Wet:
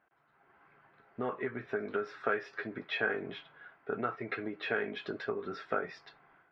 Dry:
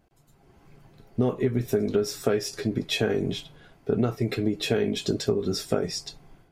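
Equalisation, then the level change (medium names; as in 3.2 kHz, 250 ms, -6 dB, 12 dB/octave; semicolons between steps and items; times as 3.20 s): band-pass filter 1.5 kHz, Q 2.2; distance through air 330 m; +7.5 dB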